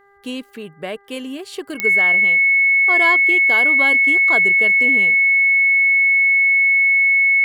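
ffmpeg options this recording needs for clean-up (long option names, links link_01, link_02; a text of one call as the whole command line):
ffmpeg -i in.wav -af "adeclick=threshold=4,bandreject=frequency=399.7:width_type=h:width=4,bandreject=frequency=799.4:width_type=h:width=4,bandreject=frequency=1199.1:width_type=h:width=4,bandreject=frequency=1598.8:width_type=h:width=4,bandreject=frequency=1998.5:width_type=h:width=4,bandreject=frequency=2200:width=30" out.wav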